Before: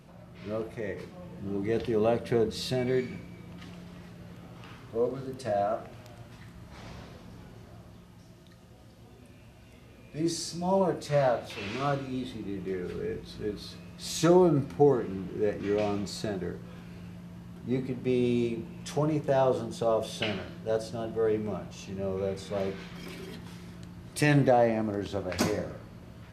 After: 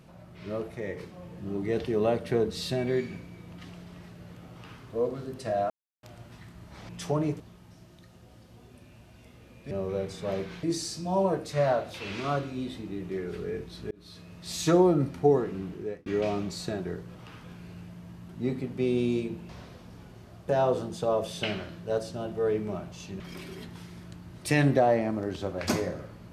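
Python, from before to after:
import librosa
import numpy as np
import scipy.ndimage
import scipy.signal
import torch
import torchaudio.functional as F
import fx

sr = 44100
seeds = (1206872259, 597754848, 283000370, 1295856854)

y = fx.edit(x, sr, fx.duplicate(start_s=4.52, length_s=0.29, to_s=16.71),
    fx.silence(start_s=5.7, length_s=0.33),
    fx.swap(start_s=6.89, length_s=0.99, other_s=18.76, other_length_s=0.51),
    fx.fade_in_span(start_s=13.47, length_s=0.57, curve='qsin'),
    fx.fade_out_span(start_s=15.24, length_s=0.38),
    fx.move(start_s=21.99, length_s=0.92, to_s=10.19), tone=tone)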